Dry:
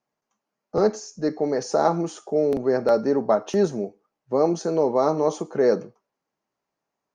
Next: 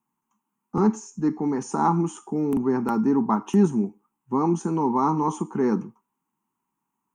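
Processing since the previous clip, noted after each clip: FFT filter 110 Hz 0 dB, 220 Hz +9 dB, 380 Hz -1 dB, 590 Hz -24 dB, 920 Hz +9 dB, 1.7 kHz -6 dB, 2.9 kHz 0 dB, 4.5 kHz -18 dB, 8 kHz +8 dB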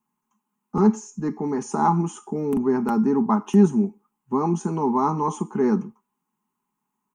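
comb 4.8 ms, depth 46%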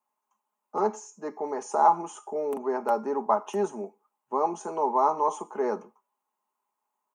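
resonant high-pass 580 Hz, resonance Q 7; trim -4.5 dB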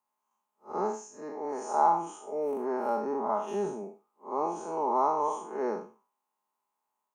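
spectral blur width 136 ms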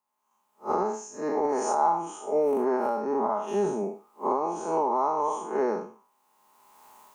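recorder AGC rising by 23 dB/s

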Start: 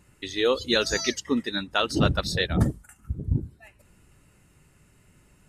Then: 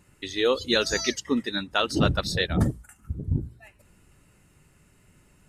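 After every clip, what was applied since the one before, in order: hum notches 60/120 Hz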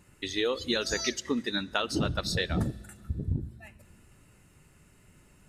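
compression, threshold -25 dBFS, peak gain reduction 9 dB; on a send at -21 dB: reverberation RT60 2.1 s, pre-delay 5 ms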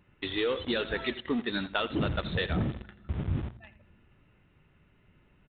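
in parallel at -6.5 dB: companded quantiser 2-bit; on the sum: delay 84 ms -16 dB; resampled via 8 kHz; trim -4 dB

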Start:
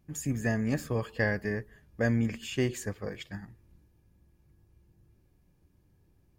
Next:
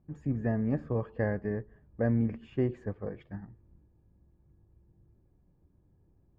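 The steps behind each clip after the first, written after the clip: low-pass 1 kHz 12 dB/octave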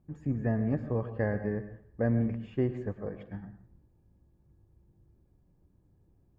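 plate-style reverb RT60 0.51 s, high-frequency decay 0.85×, pre-delay 95 ms, DRR 11 dB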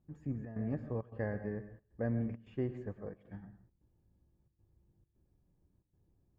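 trance gate "xxxx.xxxx.xx" 134 bpm -12 dB; trim -7 dB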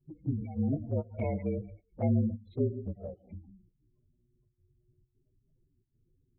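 frequency axis rescaled in octaves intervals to 114%; spectral gate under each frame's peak -20 dB strong; touch-sensitive flanger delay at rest 8.4 ms, full sweep at -36 dBFS; trim +8.5 dB

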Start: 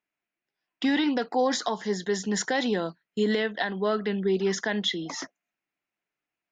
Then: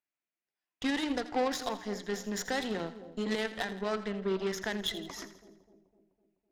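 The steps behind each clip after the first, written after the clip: hum notches 60/120/180/240/300/360/420 Hz; Chebyshev shaper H 3 -13 dB, 5 -31 dB, 8 -26 dB, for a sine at -14.5 dBFS; two-band feedback delay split 710 Hz, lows 253 ms, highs 83 ms, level -13.5 dB; trim -2.5 dB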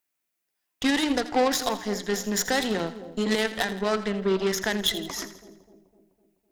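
treble shelf 7.3 kHz +9.5 dB; trim +7.5 dB

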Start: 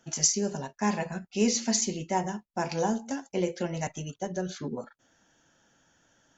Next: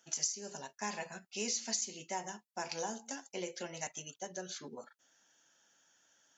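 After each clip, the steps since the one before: high-pass 540 Hz 6 dB/octave; treble shelf 2.8 kHz +9 dB; compression 4:1, threshold -26 dBFS, peak gain reduction 12.5 dB; trim -7.5 dB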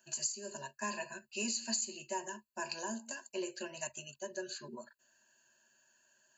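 rippled EQ curve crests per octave 1.4, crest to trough 18 dB; trim -4 dB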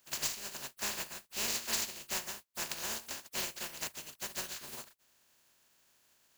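spectral contrast reduction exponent 0.15; trim +2 dB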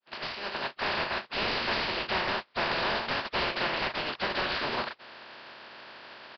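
fade-in on the opening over 1.90 s; overdrive pedal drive 34 dB, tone 1.1 kHz, clips at -18.5 dBFS; resampled via 11.025 kHz; trim +6.5 dB

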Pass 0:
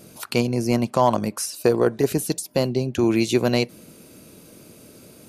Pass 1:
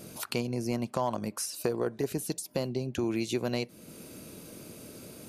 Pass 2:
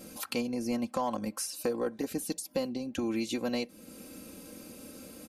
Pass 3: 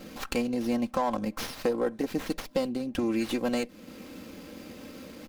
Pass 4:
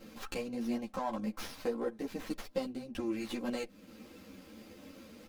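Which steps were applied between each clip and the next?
compression 2:1, threshold -36 dBFS, peak gain reduction 13 dB
comb 3.8 ms, depth 78%; trim -3 dB
sliding maximum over 5 samples; trim +4 dB
three-phase chorus; trim -5 dB

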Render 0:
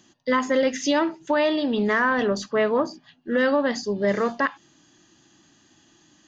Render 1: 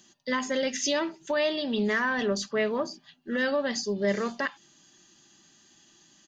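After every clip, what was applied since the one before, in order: treble shelf 2.7 kHz +9 dB; comb 5.1 ms, depth 38%; dynamic bell 1.1 kHz, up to -4 dB, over -31 dBFS, Q 1.1; trim -6 dB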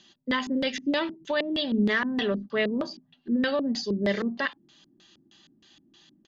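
LFO low-pass square 3.2 Hz 280–3700 Hz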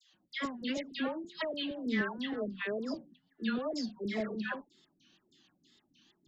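phase dispersion lows, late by 147 ms, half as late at 1.2 kHz; wow and flutter 150 cents; trim -9 dB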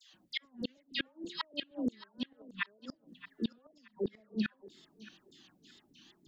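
inverted gate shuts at -28 dBFS, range -36 dB; thinning echo 624 ms, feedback 30%, high-pass 410 Hz, level -15.5 dB; trim +6 dB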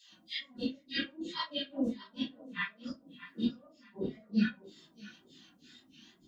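phase randomisation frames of 100 ms; comb of notches 430 Hz; reverberation RT60 0.25 s, pre-delay 4 ms, DRR 11 dB; trim +3 dB

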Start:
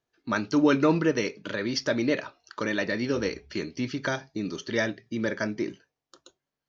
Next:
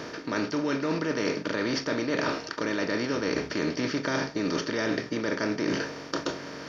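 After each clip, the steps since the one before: spectral levelling over time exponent 0.4; reverse; compression 12:1, threshold -29 dBFS, peak gain reduction 16.5 dB; reverse; trim +4.5 dB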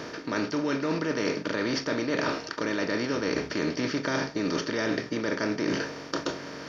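no audible change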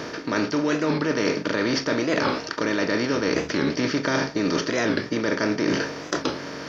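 warped record 45 rpm, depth 160 cents; trim +5 dB

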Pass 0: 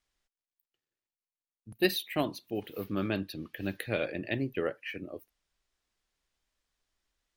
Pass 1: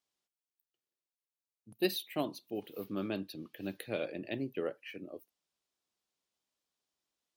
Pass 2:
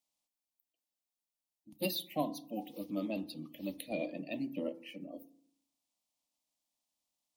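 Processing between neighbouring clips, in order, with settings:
high-pass 160 Hz 12 dB/octave; peaking EQ 1.8 kHz -7 dB 0.96 oct; trim -3.5 dB
coarse spectral quantiser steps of 30 dB; static phaser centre 410 Hz, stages 6; FDN reverb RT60 0.6 s, low-frequency decay 1.35×, high-frequency decay 0.4×, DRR 11.5 dB; trim +2.5 dB

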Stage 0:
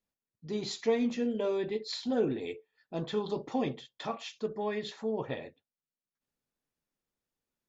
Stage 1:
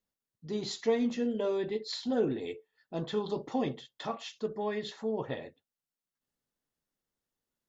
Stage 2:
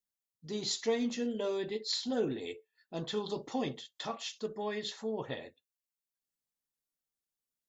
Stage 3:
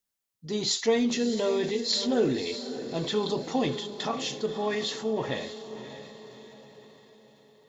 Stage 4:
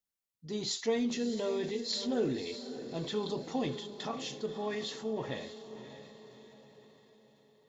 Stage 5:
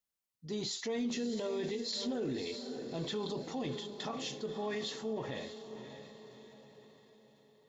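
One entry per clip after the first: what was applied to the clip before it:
band-stop 2.4 kHz, Q 10
spectral noise reduction 9 dB; treble shelf 3.3 kHz +12 dB; trim -3.5 dB
echo that smears into a reverb 605 ms, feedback 48%, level -11.5 dB; transient shaper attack 0 dB, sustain +4 dB; trim +7 dB
bass shelf 350 Hz +3 dB; trim -8 dB
peak limiter -28.5 dBFS, peak gain reduction 8.5 dB

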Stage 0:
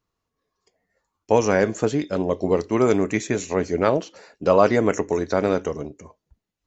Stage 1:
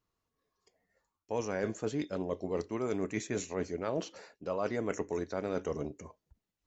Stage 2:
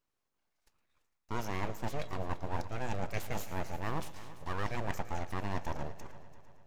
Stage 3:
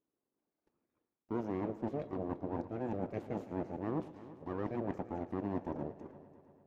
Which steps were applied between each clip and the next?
reverse; compression 6:1, threshold -26 dBFS, peak gain reduction 15 dB; reverse; endings held to a fixed fall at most 580 dB/s; trim -4.5 dB
full-wave rectifier; multi-head delay 113 ms, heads first and third, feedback 57%, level -17 dB
band-pass filter 310 Hz, Q 1.8; trim +8 dB

